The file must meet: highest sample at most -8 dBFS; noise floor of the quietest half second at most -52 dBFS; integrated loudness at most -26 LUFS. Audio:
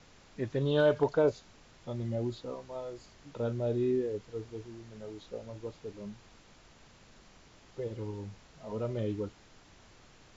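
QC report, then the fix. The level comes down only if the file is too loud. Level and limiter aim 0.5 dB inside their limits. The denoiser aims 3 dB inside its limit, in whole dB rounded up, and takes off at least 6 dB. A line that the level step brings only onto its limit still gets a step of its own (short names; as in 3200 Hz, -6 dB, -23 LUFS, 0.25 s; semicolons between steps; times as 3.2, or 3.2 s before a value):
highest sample -16.0 dBFS: OK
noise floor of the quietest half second -58 dBFS: OK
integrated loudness -34.0 LUFS: OK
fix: none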